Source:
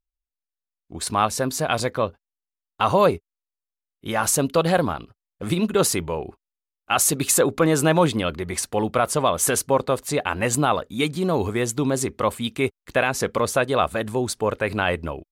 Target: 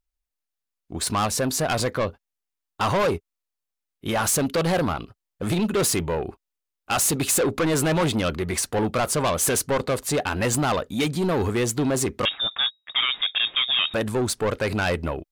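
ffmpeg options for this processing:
-filter_complex "[0:a]asoftclip=type=tanh:threshold=0.0794,asettb=1/sr,asplit=3[s0][s1][s2];[s0]atrim=end=12.254[s3];[s1]atrim=start=12.25:end=13.94,asetpts=PTS-STARTPTS,afade=t=in:d=0.004:c=qsin,afade=t=out:st=1.686:d=0.004:c=qsin,lowpass=f=3200:t=q:w=0.5098,lowpass=f=3200:t=q:w=0.6013,lowpass=f=3200:t=q:w=0.9,lowpass=f=3200:t=q:w=2.563,afreqshift=-3800[s4];[s2]atrim=start=13.936[s5];[s3][s4]acrossfade=d=0.004:c1=hsin:c2=qsin[s6];[s6][s5]acrossfade=d=0.004:c1=qsin:c2=hsin,volume=1.58"

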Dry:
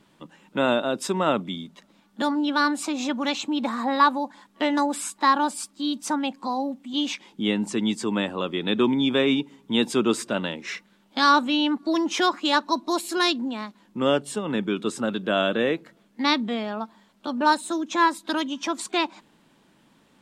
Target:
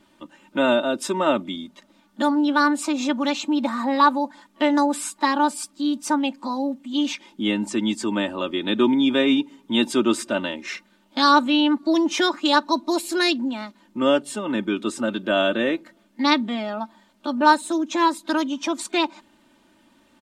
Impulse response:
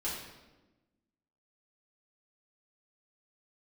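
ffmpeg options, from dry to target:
-af "aecho=1:1:3.3:0.67"

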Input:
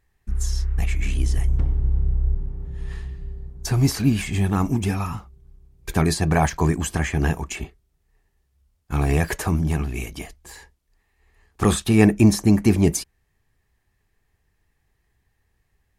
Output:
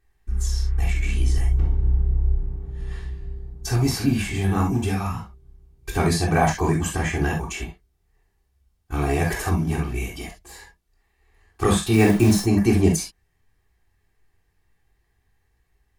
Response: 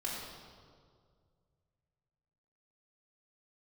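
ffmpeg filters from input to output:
-filter_complex "[0:a]asettb=1/sr,asplit=3[s0][s1][s2];[s0]atrim=end=11.934[s3];[s1]atrim=start=11.93:end=12.43,asetpts=PTS-STARTPTS,afade=t=in:d=0.004:c=qsin,afade=t=out:st=0.496:d=0.004:c=qsin,acrusher=bits=6:dc=4:mix=0:aa=0.000001[s4];[s2]atrim=start=12.426[s5];[s3][s4]acrossfade=d=0.004:c1=hsin:c2=qsin[s6];[s6][s5]acrossfade=d=0.004:c1=qsin:c2=hsin[s7];[1:a]atrim=start_sample=2205,atrim=end_sample=3528[s8];[s7][s8]afir=irnorm=-1:irlink=0"

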